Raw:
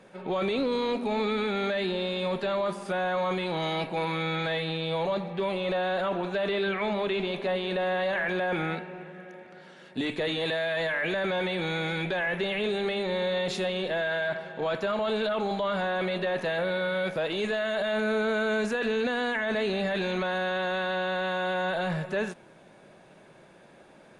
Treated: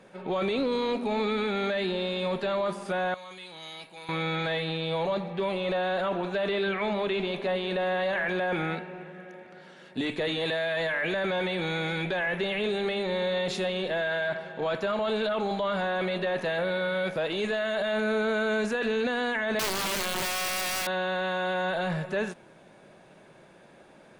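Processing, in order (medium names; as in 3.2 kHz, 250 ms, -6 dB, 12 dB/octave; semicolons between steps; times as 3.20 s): 3.14–4.09 s: pre-emphasis filter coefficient 0.9; 19.59–20.87 s: integer overflow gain 24 dB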